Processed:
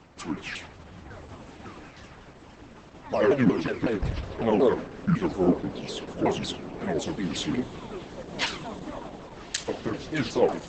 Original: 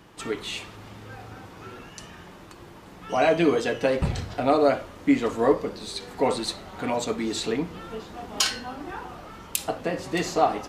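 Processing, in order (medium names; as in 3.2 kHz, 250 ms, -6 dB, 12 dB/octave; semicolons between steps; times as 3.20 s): sawtooth pitch modulation -9.5 st, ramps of 184 ms; echo that smears into a reverb 1273 ms, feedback 47%, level -15 dB; Opus 12 kbps 48 kHz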